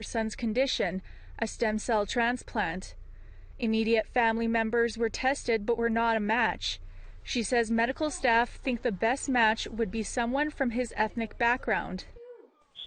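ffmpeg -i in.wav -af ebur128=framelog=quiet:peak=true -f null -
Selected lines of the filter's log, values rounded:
Integrated loudness:
  I:         -28.6 LUFS
  Threshold: -39.2 LUFS
Loudness range:
  LRA:         3.0 LU
  Threshold: -48.9 LUFS
  LRA low:   -30.8 LUFS
  LRA high:  -27.8 LUFS
True peak:
  Peak:      -12.1 dBFS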